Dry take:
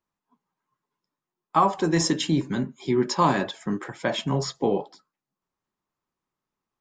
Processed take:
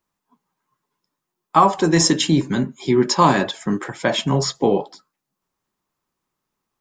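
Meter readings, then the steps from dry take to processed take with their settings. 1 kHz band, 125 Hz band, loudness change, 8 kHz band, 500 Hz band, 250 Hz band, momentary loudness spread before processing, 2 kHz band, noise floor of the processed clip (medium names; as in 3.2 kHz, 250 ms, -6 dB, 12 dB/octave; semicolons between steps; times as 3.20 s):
+6.0 dB, +6.0 dB, +6.5 dB, +9.0 dB, +6.0 dB, +6.0 dB, 8 LU, +6.5 dB, -81 dBFS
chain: treble shelf 5.4 kHz +5 dB; trim +6 dB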